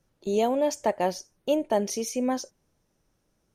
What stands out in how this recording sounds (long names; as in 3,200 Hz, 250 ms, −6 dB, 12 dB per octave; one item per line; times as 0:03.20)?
background noise floor −73 dBFS
spectral slope −4.0 dB per octave